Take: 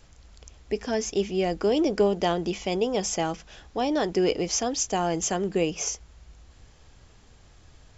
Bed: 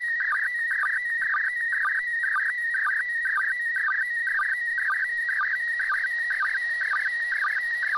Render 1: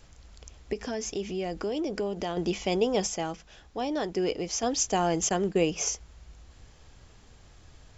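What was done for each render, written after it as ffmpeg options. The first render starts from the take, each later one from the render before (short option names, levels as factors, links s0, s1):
-filter_complex "[0:a]asettb=1/sr,asplit=3[s0][s1][s2];[s0]atrim=end=0.734[s3];[s1]atrim=start=0.73:end=2.37,asetpts=PTS-STARTPTS,afade=t=in:d=0.004:c=qsin,afade=t=out:st=1.636:d=0.004:c=qsin,acompressor=threshold=0.0282:ratio=2.5:attack=3.2:release=140:knee=1:detection=peak[s4];[s2]atrim=start=2.366[s5];[s3][s4]acrossfade=d=0.004:c1=hsin:c2=qsin[s6];[s6][s5]acrossfade=d=0.004:c1=qsin:c2=hsin,asettb=1/sr,asplit=3[s7][s8][s9];[s7]atrim=end=5.294[s10];[s8]atrim=start=5.29:end=5.72,asetpts=PTS-STARTPTS,afade=t=in:d=0.004:c=qsin,afade=t=out:st=0.426:d=0.004:c=qsin,agate=range=0.0224:threshold=0.0224:ratio=3:release=100:detection=peak[s11];[s9]atrim=start=5.716[s12];[s10][s11]acrossfade=d=0.004:c1=hsin:c2=qsin[s13];[s13][s12]acrossfade=d=0.004:c1=qsin:c2=hsin,asplit=3[s14][s15][s16];[s14]atrim=end=3.072[s17];[s15]atrim=start=3.068:end=4.632,asetpts=PTS-STARTPTS,volume=0.562[s18];[s16]atrim=start=4.628[s19];[s17][s18]acrossfade=d=0.004:c1=hsin:c2=hsin[s20];[s20][s19]acrossfade=d=0.004:c1=hsin:c2=hsin"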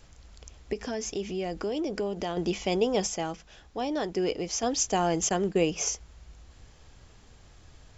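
-af anull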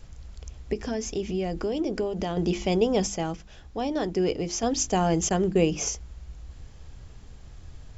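-af "lowshelf=f=240:g=11,bandreject=f=50:t=h:w=6,bandreject=f=100:t=h:w=6,bandreject=f=150:t=h:w=6,bandreject=f=200:t=h:w=6,bandreject=f=250:t=h:w=6,bandreject=f=300:t=h:w=6,bandreject=f=350:t=h:w=6"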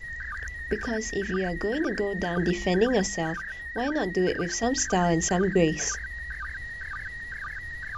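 -filter_complex "[1:a]volume=0.282[s0];[0:a][s0]amix=inputs=2:normalize=0"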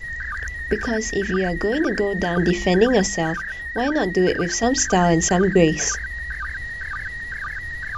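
-af "volume=2.11"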